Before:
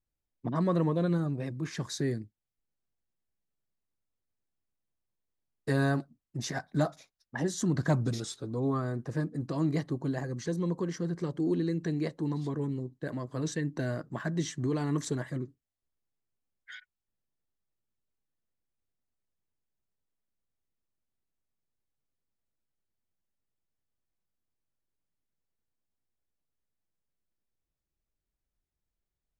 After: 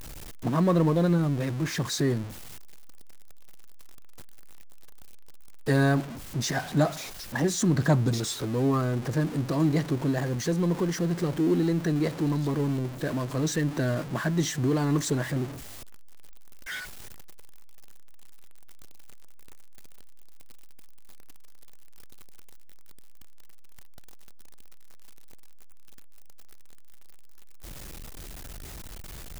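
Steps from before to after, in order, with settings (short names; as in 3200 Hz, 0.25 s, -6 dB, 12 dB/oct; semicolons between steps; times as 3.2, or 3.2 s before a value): zero-crossing step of -37 dBFS; gain +4 dB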